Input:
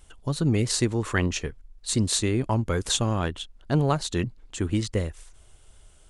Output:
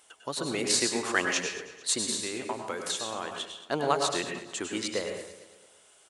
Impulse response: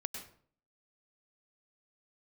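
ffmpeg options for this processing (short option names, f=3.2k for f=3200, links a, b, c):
-filter_complex "[0:a]highpass=500,asettb=1/sr,asplit=3[a][b][c];[a]atrim=end=1.974[d];[b]atrim=start=1.97:end=3.56,asetpts=PTS-STARTPTS,afade=t=in:d=0.004:c=qsin,afade=t=out:st=1.586:d=0.004:c=qsin,acompressor=threshold=-32dB:ratio=6[e];[c]atrim=start=3.556[f];[d][e]acrossfade=d=0.004:c1=hsin:c2=qsin[g];[g][f]acrossfade=d=0.004:c1=qsin:c2=hsin,aecho=1:1:224|448|672:0.158|0.0602|0.0229[h];[1:a]atrim=start_sample=2205,asetrate=43218,aresample=44100[i];[h][i]afir=irnorm=-1:irlink=0,volume=3dB"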